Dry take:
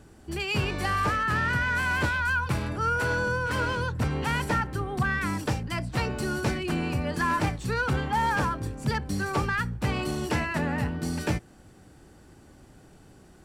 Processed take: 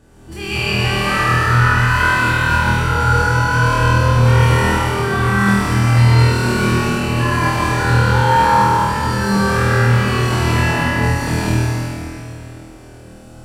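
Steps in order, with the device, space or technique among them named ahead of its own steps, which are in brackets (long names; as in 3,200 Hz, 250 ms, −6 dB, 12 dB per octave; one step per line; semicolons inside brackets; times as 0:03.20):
tunnel (flutter between parallel walls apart 4.3 metres, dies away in 1.4 s; convolution reverb RT60 2.8 s, pre-delay 98 ms, DRR −6.5 dB)
level −1 dB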